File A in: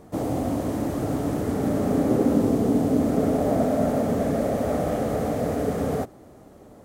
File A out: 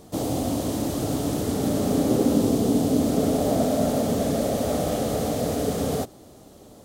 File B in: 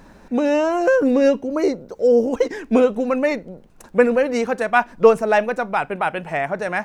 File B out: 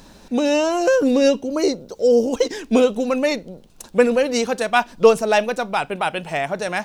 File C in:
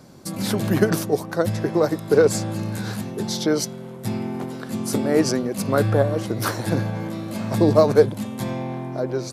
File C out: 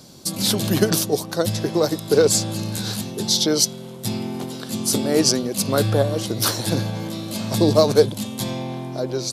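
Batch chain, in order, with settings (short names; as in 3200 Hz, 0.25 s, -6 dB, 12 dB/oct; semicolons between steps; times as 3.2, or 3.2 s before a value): resonant high shelf 2600 Hz +8.5 dB, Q 1.5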